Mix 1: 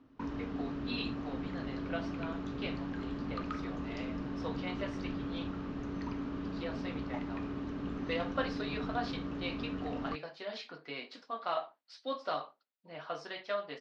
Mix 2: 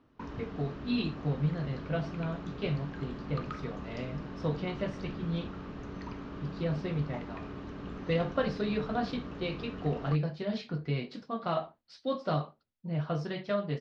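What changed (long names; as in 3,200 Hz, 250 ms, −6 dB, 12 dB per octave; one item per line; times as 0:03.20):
speech: remove high-pass filter 680 Hz 12 dB per octave
master: add parametric band 270 Hz −10 dB 0.2 octaves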